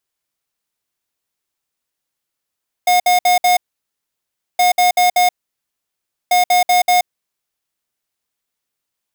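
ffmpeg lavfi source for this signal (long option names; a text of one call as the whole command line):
ffmpeg -f lavfi -i "aevalsrc='0.251*(2*lt(mod(720*t,1),0.5)-1)*clip(min(mod(mod(t,1.72),0.19),0.13-mod(mod(t,1.72),0.19))/0.005,0,1)*lt(mod(t,1.72),0.76)':duration=5.16:sample_rate=44100" out.wav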